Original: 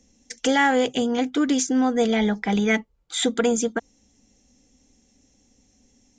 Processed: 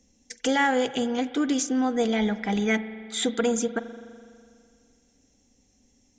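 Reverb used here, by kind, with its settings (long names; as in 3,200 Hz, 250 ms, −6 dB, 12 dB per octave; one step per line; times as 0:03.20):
spring reverb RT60 2.2 s, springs 41 ms, chirp 40 ms, DRR 13 dB
level −3.5 dB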